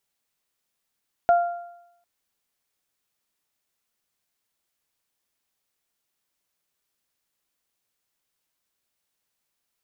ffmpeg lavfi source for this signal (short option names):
-f lavfi -i "aevalsrc='0.251*pow(10,-3*t/0.82)*sin(2*PI*695*t)+0.0562*pow(10,-3*t/0.81)*sin(2*PI*1390*t)':d=0.75:s=44100"